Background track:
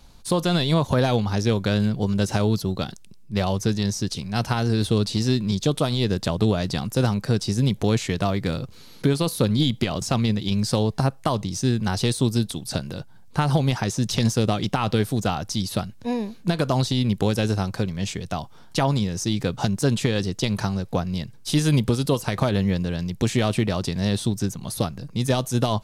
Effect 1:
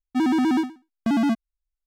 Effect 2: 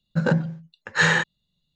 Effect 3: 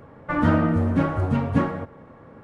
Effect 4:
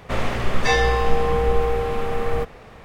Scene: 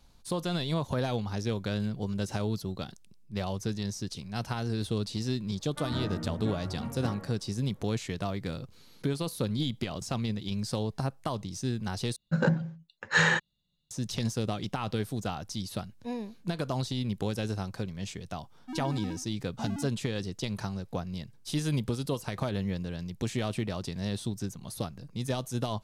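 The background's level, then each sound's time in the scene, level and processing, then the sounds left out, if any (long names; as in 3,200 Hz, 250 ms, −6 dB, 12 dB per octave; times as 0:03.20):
background track −10 dB
0:05.48: mix in 3 −16 dB
0:12.16: overwrite with 2 −4.5 dB
0:18.53: mix in 1 −17.5 dB
not used: 4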